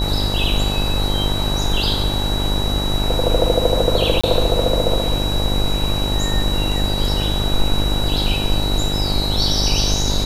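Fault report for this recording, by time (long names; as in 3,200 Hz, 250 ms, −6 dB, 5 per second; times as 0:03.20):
mains buzz 50 Hz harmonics 19 −22 dBFS
whistle 3,900 Hz −24 dBFS
0:04.21–0:04.24: drop-out 25 ms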